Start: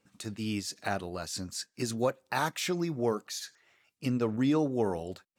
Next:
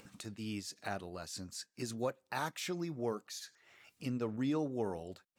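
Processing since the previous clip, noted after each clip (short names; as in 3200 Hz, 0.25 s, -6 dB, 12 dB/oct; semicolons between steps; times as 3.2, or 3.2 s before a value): upward compressor, threshold -36 dBFS; gain -7.5 dB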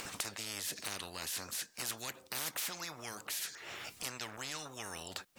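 spectral compressor 10:1; gain +3.5 dB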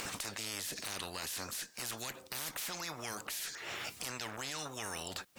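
one diode to ground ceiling -29 dBFS; in parallel at +2 dB: negative-ratio compressor -45 dBFS, ratio -1; on the sum: gain -4 dB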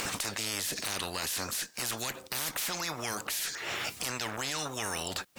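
sample leveller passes 1; gain +3 dB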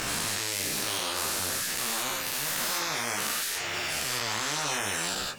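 spectral dilation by 0.24 s; chorus voices 2, 0.53 Hz, delay 16 ms, depth 4.8 ms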